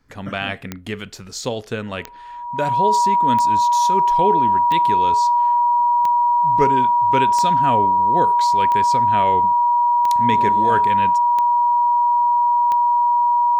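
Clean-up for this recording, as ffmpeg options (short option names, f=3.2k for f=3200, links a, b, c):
-af "adeclick=t=4,bandreject=f=960:w=30"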